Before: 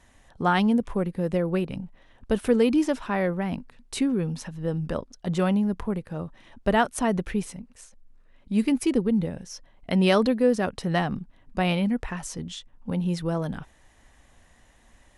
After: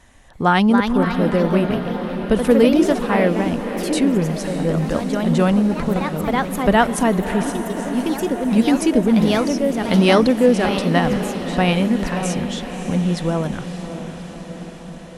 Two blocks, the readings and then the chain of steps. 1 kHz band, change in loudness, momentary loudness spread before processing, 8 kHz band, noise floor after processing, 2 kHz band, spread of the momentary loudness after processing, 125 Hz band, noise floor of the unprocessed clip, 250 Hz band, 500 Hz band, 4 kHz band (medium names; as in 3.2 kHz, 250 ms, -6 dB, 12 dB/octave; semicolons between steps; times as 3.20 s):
+8.5 dB, +7.5 dB, 15 LU, +8.0 dB, -35 dBFS, +8.5 dB, 12 LU, +7.5 dB, -58 dBFS, +8.5 dB, +8.0 dB, +8.5 dB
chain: ever faster or slower copies 331 ms, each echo +2 st, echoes 3, each echo -6 dB; echo that smears into a reverb 595 ms, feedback 67%, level -10.5 dB; trim +6.5 dB